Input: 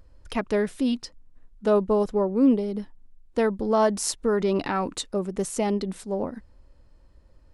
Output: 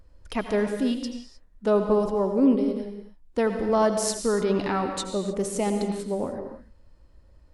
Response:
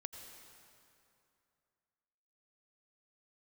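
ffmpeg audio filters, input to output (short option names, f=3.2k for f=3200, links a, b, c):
-filter_complex "[1:a]atrim=start_sample=2205,afade=t=out:st=0.4:d=0.01,atrim=end_sample=18081,asetrate=48510,aresample=44100[a];[0:a][a]afir=irnorm=-1:irlink=0,volume=4.5dB"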